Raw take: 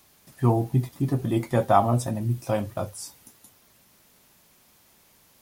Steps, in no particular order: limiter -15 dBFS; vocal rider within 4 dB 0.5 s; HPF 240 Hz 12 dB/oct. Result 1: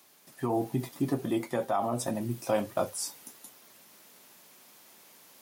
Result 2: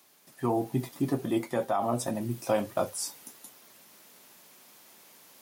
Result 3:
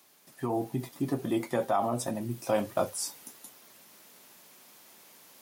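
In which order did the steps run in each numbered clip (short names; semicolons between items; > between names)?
limiter > HPF > vocal rider; HPF > limiter > vocal rider; limiter > vocal rider > HPF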